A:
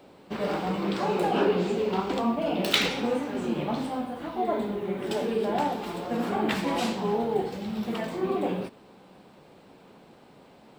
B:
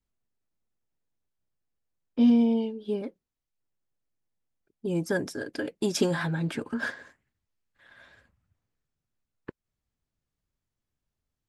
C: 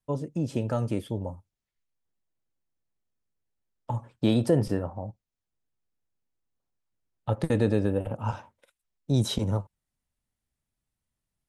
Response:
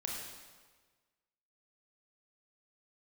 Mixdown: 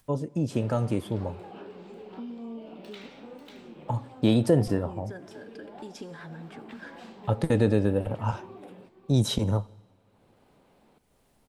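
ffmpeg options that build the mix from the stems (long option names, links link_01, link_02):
-filter_complex "[0:a]adelay=200,volume=-17dB,asplit=2[link_01][link_02];[link_02]volume=-13dB[link_03];[1:a]volume=-10dB,asplit=2[link_04][link_05];[link_05]volume=-20dB[link_06];[2:a]volume=1dB,asplit=2[link_07][link_08];[link_08]volume=-22.5dB[link_09];[link_01][link_04]amix=inputs=2:normalize=0,highshelf=frequency=7100:gain=-10.5,acompressor=threshold=-41dB:ratio=3,volume=0dB[link_10];[3:a]atrim=start_sample=2205[link_11];[link_06][link_09]amix=inputs=2:normalize=0[link_12];[link_12][link_11]afir=irnorm=-1:irlink=0[link_13];[link_03]aecho=0:1:543:1[link_14];[link_07][link_10][link_13][link_14]amix=inputs=4:normalize=0,acompressor=mode=upward:threshold=-52dB:ratio=2.5"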